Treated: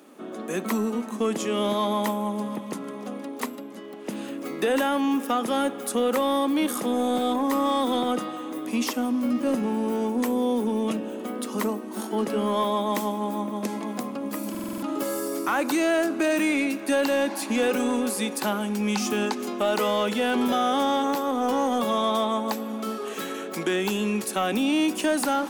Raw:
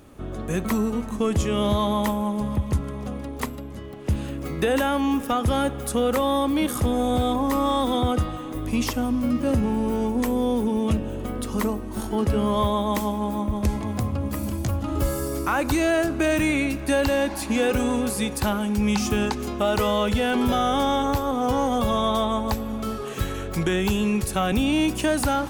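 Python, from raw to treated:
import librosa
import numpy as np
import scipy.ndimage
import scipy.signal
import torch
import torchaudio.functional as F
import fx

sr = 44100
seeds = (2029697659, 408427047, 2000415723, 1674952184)

y = scipy.signal.sosfilt(scipy.signal.butter(6, 210.0, 'highpass', fs=sr, output='sos'), x)
y = 10.0 ** (-14.0 / 20.0) * np.tanh(y / 10.0 ** (-14.0 / 20.0))
y = fx.buffer_glitch(y, sr, at_s=(14.5,), block=2048, repeats=6)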